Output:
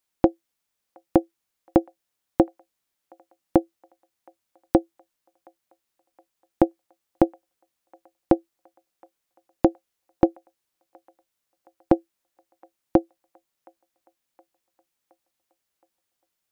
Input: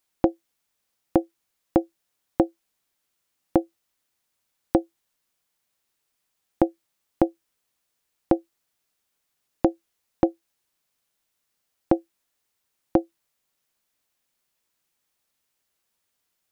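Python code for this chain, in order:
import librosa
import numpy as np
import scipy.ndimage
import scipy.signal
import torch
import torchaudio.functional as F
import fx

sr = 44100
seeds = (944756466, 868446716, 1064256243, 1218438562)

y = fx.echo_wet_bandpass(x, sr, ms=719, feedback_pct=56, hz=1200.0, wet_db=-21.0)
y = fx.upward_expand(y, sr, threshold_db=-27.0, expansion=1.5)
y = F.gain(torch.from_numpy(y), 2.5).numpy()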